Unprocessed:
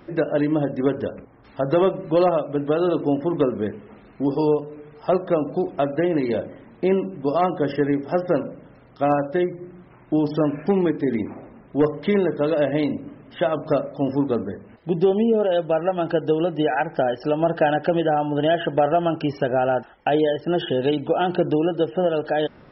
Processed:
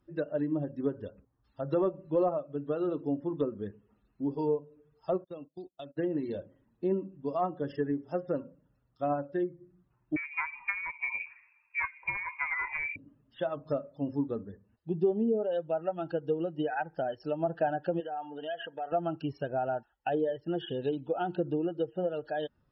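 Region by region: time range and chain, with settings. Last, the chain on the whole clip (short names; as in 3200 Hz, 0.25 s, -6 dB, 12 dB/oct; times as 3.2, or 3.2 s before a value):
5.24–5.97 gate -27 dBFS, range -24 dB + resonant high shelf 2600 Hz +7.5 dB, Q 1.5 + compressor 2:1, threshold -29 dBFS
10.16–12.96 self-modulated delay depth 0.23 ms + bell 1600 Hz +13 dB 0.31 oct + inverted band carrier 2600 Hz
18–18.92 HPF 440 Hz 6 dB/oct + comb 4.3 ms, depth 38% + compressor 2.5:1, threshold -22 dBFS
whole clip: per-bin expansion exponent 1.5; treble ducked by the level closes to 1400 Hz, closed at -18 dBFS; gain -7.5 dB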